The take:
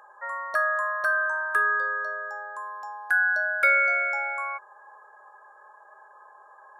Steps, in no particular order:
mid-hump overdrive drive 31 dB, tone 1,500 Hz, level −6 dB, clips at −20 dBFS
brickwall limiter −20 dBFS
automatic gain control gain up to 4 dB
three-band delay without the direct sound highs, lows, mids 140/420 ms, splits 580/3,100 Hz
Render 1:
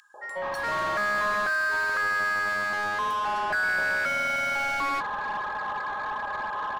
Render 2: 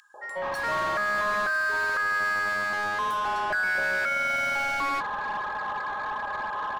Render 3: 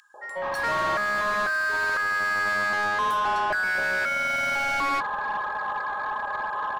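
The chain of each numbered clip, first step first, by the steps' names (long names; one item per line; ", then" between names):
brickwall limiter, then automatic gain control, then three-band delay without the direct sound, then mid-hump overdrive
three-band delay without the direct sound, then automatic gain control, then mid-hump overdrive, then brickwall limiter
three-band delay without the direct sound, then mid-hump overdrive, then automatic gain control, then brickwall limiter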